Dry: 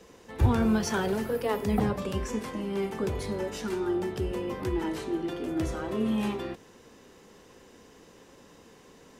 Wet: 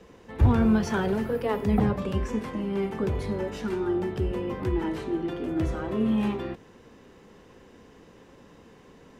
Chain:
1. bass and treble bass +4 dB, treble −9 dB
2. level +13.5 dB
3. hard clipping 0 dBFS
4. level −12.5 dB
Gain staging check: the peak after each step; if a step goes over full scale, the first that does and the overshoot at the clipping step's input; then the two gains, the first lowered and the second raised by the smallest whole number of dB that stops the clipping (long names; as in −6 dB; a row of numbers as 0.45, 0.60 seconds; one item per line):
−7.0, +6.5, 0.0, −12.5 dBFS
step 2, 6.5 dB
step 2 +6.5 dB, step 4 −5.5 dB